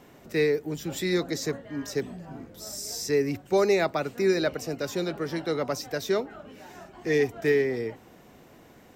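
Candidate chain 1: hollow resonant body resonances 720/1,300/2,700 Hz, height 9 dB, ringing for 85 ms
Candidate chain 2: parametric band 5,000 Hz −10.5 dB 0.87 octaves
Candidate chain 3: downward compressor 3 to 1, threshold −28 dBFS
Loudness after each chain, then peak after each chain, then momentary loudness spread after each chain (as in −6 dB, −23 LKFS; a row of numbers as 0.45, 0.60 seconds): −27.5, −28.0, −32.5 LKFS; −12.0, −13.5, −19.0 dBFS; 15, 16, 10 LU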